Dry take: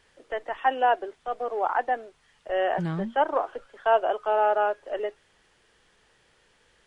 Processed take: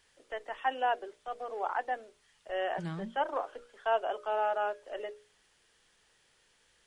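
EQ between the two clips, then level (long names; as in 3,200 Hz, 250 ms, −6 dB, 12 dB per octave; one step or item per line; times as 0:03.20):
high-shelf EQ 3,200 Hz +10 dB
mains-hum notches 60/120/180/240/300/360/420/480/540/600 Hz
−8.5 dB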